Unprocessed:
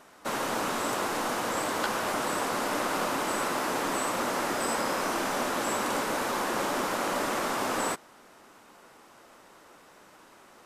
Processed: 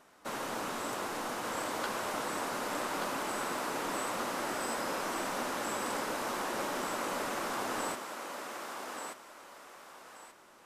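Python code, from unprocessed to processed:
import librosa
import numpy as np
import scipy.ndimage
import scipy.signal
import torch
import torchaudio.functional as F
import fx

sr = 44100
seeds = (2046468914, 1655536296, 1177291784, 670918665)

y = fx.echo_thinned(x, sr, ms=1181, feedback_pct=31, hz=380.0, wet_db=-4.5)
y = y * 10.0 ** (-7.0 / 20.0)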